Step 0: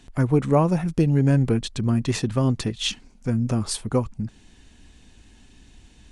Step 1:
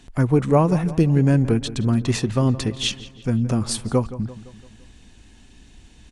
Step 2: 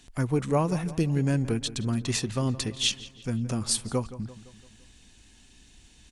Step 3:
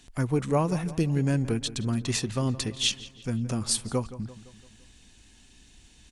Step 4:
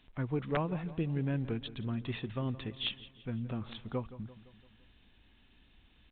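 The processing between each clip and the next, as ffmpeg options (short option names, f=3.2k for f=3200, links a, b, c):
-filter_complex "[0:a]asplit=2[a][b];[b]adelay=170,lowpass=f=3.5k:p=1,volume=-15.5dB,asplit=2[c][d];[d]adelay=170,lowpass=f=3.5k:p=1,volume=0.54,asplit=2[e][f];[f]adelay=170,lowpass=f=3.5k:p=1,volume=0.54,asplit=2[g][h];[h]adelay=170,lowpass=f=3.5k:p=1,volume=0.54,asplit=2[i][j];[j]adelay=170,lowpass=f=3.5k:p=1,volume=0.54[k];[a][c][e][g][i][k]amix=inputs=6:normalize=0,volume=2dB"
-af "highshelf=f=2.4k:g=10,volume=-8.5dB"
-af anull
-af "aeval=exprs='(mod(5.01*val(0)+1,2)-1)/5.01':c=same,volume=-8dB" -ar 8000 -c:a pcm_alaw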